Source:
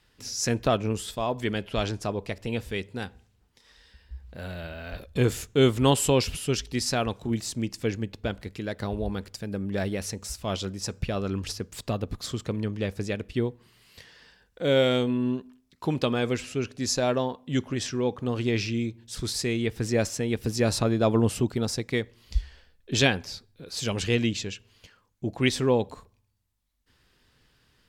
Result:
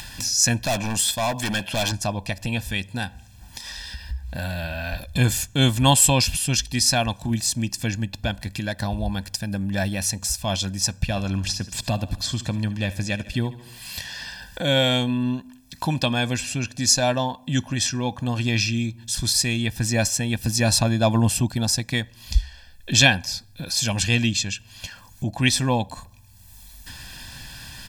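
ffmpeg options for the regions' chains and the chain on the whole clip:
-filter_complex "[0:a]asettb=1/sr,asplit=3[a][b][c];[a]atrim=end=0.654[d];[b]atrim=start=0.65:end=1.92,asetpts=PTS-STARTPTS,afade=t=in:d=0.004:c=qsin,afade=t=out:st=1.266:d=0.004:c=qsin,highpass=f=210:p=1,acontrast=34,volume=25dB,asoftclip=hard,volume=-25dB[e];[c]atrim=start=1.916[f];[d][e]acrossfade=d=0.004:c1=hsin:c2=qsin[g];[g][f]acrossfade=d=0.004:c1=qsin:c2=hsin,asettb=1/sr,asplit=3[h][i][j];[h]atrim=end=10.944[k];[i]atrim=start=10.94:end=14.67,asetpts=PTS-STARTPTS,afade=t=in:d=0.004:c=qsin,afade=t=out:st=3.726:d=0.004:c=qsin,acrossover=split=7100[l][m];[m]acompressor=threshold=-54dB:ratio=4:attack=1:release=60[n];[l][n]amix=inputs=2:normalize=0,aecho=1:1:73|146|219|292:0.15|0.0748|0.0374|0.0187,atrim=end_sample=164493[o];[j]atrim=start=14.666[p];[k][o]acrossfade=d=0.004:c1=hsin:c2=qsin[q];[q][p]acrossfade=d=0.004:c1=qsin:c2=hsin,highshelf=f=3.8k:g=9.5,aecho=1:1:1.2:0.84,acompressor=mode=upward:threshold=-24dB:ratio=2.5,volume=1.5dB"

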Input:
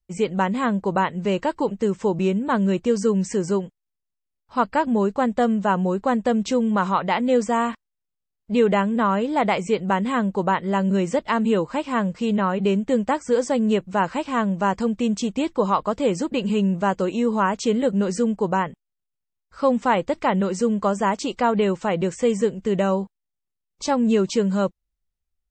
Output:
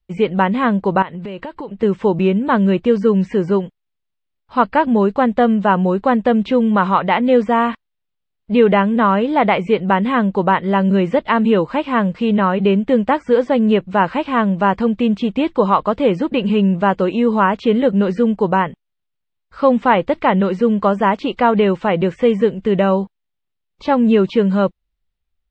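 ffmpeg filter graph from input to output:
-filter_complex "[0:a]asettb=1/sr,asplit=3[a][b][c];[a]atrim=end=1.024[d];[b]atrim=start=1.02:end=1.83,asetpts=PTS-STARTPTS,afade=t=in:d=0.004:c=qsin,afade=t=out:st=0.806:d=0.004:c=qsin,equalizer=f=6.3k:w=2.2:g=-9,acompressor=threshold=-31dB:ratio=8:attack=3.2:release=140:knee=1:detection=peak[e];[c]atrim=start=1.826[f];[d][e]acrossfade=d=0.004:c1=hsin:c2=qsin[g];[g][f]acrossfade=d=0.004:c1=qsin:c2=hsin,acrossover=split=3300[h][i];[i]acompressor=threshold=-52dB:ratio=4:attack=1:release=60[j];[h][j]amix=inputs=2:normalize=0,highshelf=f=4.9k:t=q:w=1.5:g=-9.5,volume=6dB"

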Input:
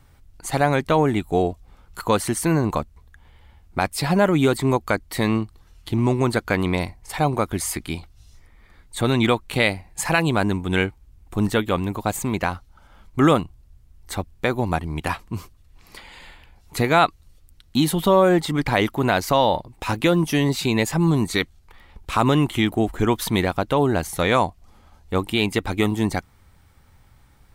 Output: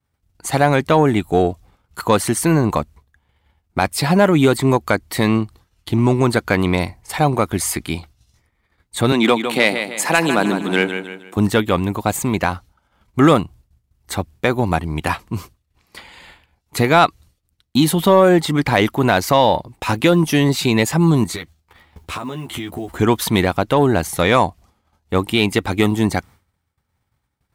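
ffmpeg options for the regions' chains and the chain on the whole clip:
-filter_complex "[0:a]asettb=1/sr,asplit=3[a][b][c];[a]atrim=end=9.124[d];[b]atrim=start=9.12:end=11.37,asetpts=PTS-STARTPTS,afade=t=in:d=0.004:c=qsin,afade=t=out:st=2.246:d=0.004:c=qsin,highpass=f=190:w=0.5412,highpass=f=190:w=1.3066,aecho=1:1:156|312|468|624|780:0.355|0.149|0.0626|0.0263|0.011,atrim=end_sample=99225[e];[c]atrim=start=11.366[f];[d][e]acrossfade=d=0.004:c1=hsin:c2=qsin[g];[g][f]acrossfade=d=0.004:c1=qsin:c2=hsin,asettb=1/sr,asplit=3[h][i][j];[h]atrim=end=21.244[k];[i]atrim=start=21.24:end=22.98,asetpts=PTS-STARTPTS,afade=t=in:d=0.004:c=qsin,afade=t=out:st=1.736:d=0.004:c=qsin,acompressor=threshold=-29dB:ratio=16:attack=3.2:release=140:knee=1:detection=peak,acrusher=bits=8:mode=log:mix=0:aa=0.000001,asplit=2[l][m];[m]adelay=12,volume=-3.5dB[n];[l][n]amix=inputs=2:normalize=0,atrim=end_sample=76734[o];[j]atrim=start=22.976[p];[k][o]acrossfade=d=0.004:c1=hsin:c2=qsin[q];[q][p]acrossfade=d=0.004:c1=qsin:c2=hsin,agate=range=-33dB:threshold=-39dB:ratio=3:detection=peak,highpass=65,acontrast=29"

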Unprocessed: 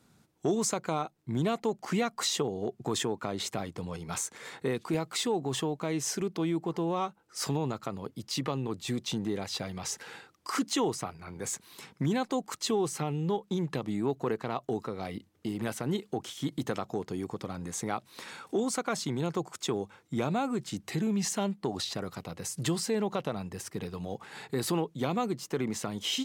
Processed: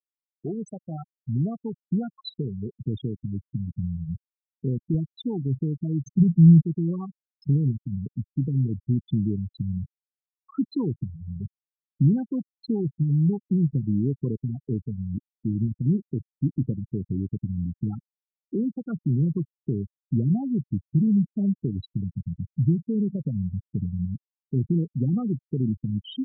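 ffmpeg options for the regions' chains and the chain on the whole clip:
-filter_complex "[0:a]asettb=1/sr,asplit=3[a][b][c];[a]atrim=end=6.054[d];[b]atrim=start=6.05:end=6.62,asetpts=PTS-STARTPTS,afade=t=in:d=0.004:c=qsin,afade=t=out:st=0.566:d=0.004:c=qsin,highpass=f=93:p=1,lowshelf=f=210:t=q:w=3:g=8.5[e];[c]atrim=start=6.616[f];[d][e]acrossfade=d=0.004:c1=hsin:c2=qsin[g];[g][f]acrossfade=d=0.004:c1=qsin:c2=hsin,asubboost=boost=6.5:cutoff=220,afftfilt=real='re*gte(hypot(re,im),0.141)':imag='im*gte(hypot(re,im),0.141)':win_size=1024:overlap=0.75,equalizer=f=970:w=0.32:g=-6.5,volume=1dB"

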